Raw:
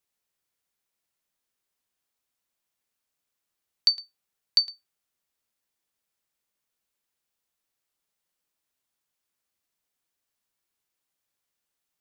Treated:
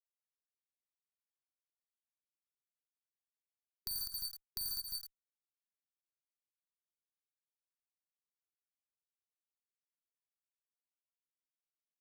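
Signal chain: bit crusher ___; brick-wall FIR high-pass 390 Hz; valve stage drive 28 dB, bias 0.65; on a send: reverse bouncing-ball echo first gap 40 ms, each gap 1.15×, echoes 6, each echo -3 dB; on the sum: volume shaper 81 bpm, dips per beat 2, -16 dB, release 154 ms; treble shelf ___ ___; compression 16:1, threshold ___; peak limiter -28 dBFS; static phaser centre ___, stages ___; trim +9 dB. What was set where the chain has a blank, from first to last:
7-bit, 6.6 kHz, +11 dB, -40 dBFS, 1.2 kHz, 4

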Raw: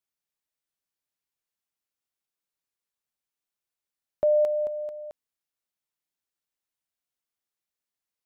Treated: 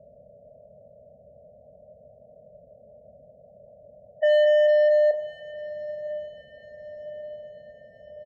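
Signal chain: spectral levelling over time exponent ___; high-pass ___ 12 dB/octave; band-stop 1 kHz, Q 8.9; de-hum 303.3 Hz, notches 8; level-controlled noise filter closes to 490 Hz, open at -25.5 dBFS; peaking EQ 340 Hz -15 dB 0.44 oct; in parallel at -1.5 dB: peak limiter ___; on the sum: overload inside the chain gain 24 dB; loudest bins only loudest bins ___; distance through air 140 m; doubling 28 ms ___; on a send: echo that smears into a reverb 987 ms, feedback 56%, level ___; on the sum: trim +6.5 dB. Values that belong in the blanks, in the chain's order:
0.4, 41 Hz, -23.5 dBFS, 16, -10 dB, -16 dB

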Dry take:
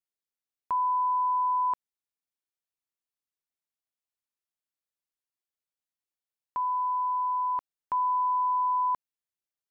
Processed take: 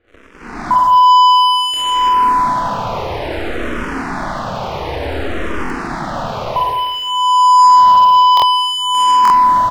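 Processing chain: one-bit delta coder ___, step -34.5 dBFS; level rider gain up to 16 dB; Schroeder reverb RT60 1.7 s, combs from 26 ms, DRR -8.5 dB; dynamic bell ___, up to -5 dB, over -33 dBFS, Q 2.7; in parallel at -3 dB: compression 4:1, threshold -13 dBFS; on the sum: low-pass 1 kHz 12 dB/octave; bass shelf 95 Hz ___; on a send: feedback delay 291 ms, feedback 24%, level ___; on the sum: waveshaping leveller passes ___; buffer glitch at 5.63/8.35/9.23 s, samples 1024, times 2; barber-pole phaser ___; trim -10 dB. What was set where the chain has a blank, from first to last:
32 kbps, 180 Hz, +4 dB, -16 dB, 3, -0.57 Hz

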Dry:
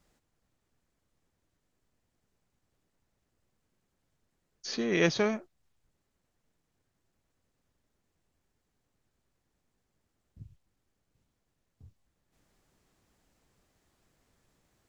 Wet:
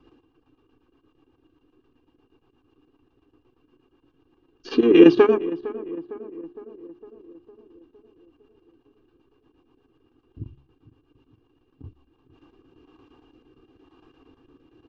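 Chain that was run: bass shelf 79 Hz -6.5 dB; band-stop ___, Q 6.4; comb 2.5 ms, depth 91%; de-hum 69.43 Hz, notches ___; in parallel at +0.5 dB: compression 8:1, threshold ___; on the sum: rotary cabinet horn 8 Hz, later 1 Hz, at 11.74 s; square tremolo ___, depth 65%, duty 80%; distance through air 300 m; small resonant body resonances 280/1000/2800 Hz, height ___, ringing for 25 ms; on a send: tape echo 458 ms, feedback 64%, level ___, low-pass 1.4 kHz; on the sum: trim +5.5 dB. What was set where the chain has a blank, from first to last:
2 kHz, 6, -40 dBFS, 8.7 Hz, 16 dB, -15 dB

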